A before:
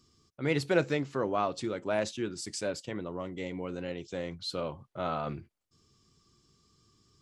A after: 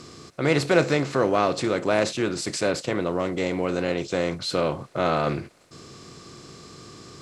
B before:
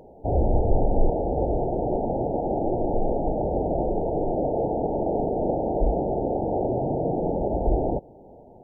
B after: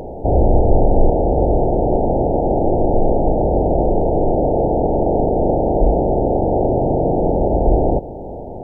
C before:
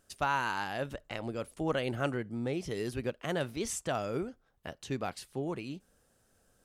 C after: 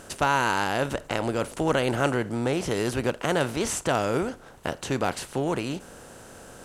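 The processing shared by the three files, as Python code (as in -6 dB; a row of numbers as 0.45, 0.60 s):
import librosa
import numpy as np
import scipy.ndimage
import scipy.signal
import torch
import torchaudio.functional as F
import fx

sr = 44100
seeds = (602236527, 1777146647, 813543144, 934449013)

y = fx.bin_compress(x, sr, power=0.6)
y = F.gain(torch.from_numpy(y), 5.5).numpy()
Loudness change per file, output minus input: +9.0, +8.5, +8.5 LU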